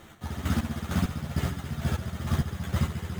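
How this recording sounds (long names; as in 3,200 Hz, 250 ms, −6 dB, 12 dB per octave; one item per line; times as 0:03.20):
aliases and images of a low sample rate 5,000 Hz, jitter 0%
chopped level 2.2 Hz, depth 60%, duty 30%
a shimmering, thickened sound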